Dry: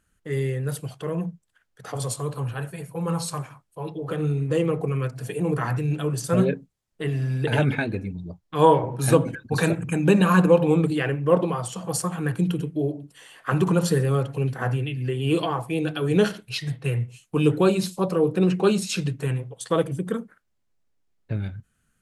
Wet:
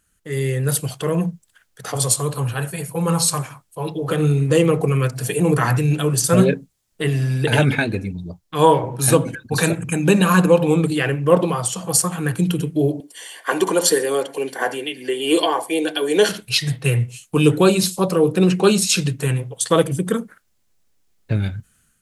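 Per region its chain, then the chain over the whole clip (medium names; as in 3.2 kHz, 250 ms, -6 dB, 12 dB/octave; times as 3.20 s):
13.00–16.29 s: high-pass 290 Hz 24 dB/octave + comb of notches 1.3 kHz
whole clip: treble shelf 3.5 kHz +10 dB; level rider gain up to 7.5 dB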